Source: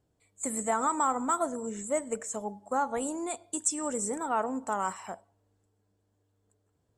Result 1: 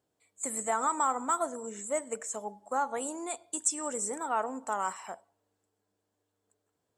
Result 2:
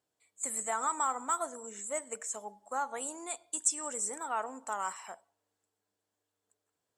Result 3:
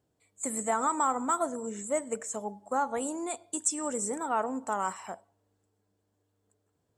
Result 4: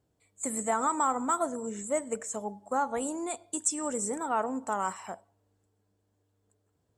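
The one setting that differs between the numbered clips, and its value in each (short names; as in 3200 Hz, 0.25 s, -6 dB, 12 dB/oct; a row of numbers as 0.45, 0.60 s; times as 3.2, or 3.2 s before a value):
HPF, cutoff: 460, 1300, 120, 43 Hz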